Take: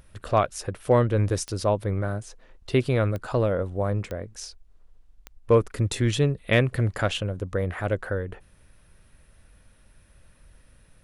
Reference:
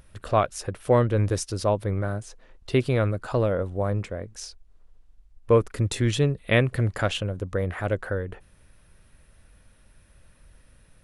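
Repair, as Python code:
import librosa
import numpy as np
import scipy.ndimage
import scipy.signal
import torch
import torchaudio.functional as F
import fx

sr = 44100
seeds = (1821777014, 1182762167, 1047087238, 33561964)

y = fx.fix_declip(x, sr, threshold_db=-9.5)
y = fx.fix_declick_ar(y, sr, threshold=10.0)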